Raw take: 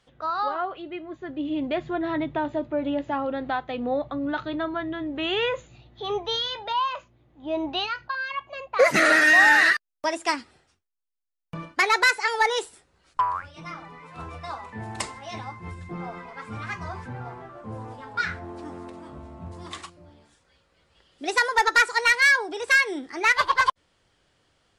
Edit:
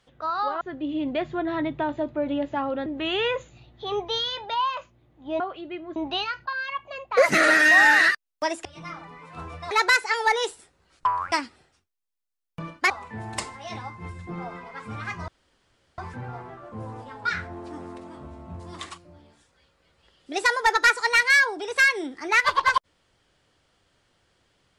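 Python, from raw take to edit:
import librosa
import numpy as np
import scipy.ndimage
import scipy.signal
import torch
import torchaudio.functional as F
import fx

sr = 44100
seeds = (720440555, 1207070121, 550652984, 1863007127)

y = fx.edit(x, sr, fx.move(start_s=0.61, length_s=0.56, to_s=7.58),
    fx.cut(start_s=3.42, length_s=1.62),
    fx.swap(start_s=10.27, length_s=1.58, other_s=13.46, other_length_s=1.06),
    fx.insert_room_tone(at_s=16.9, length_s=0.7), tone=tone)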